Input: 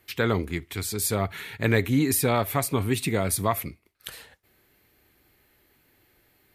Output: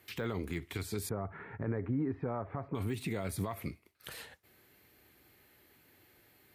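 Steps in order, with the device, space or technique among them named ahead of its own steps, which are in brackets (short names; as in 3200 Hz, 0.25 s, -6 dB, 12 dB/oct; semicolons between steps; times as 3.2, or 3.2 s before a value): 1.09–2.75 LPF 1400 Hz 24 dB/oct; podcast mastering chain (HPF 70 Hz; de-esser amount 100%; compressor 2:1, threshold -30 dBFS, peak gain reduction 7.5 dB; limiter -25.5 dBFS, peak gain reduction 10 dB; MP3 128 kbps 44100 Hz)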